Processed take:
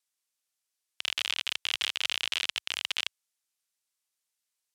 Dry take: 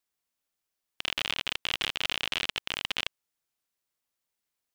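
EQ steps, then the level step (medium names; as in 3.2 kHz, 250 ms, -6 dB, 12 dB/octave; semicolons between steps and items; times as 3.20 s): low-pass 10 kHz 12 dB/octave; tilt EQ +3.5 dB/octave; peaking EQ 76 Hz -7.5 dB 0.71 oct; -5.0 dB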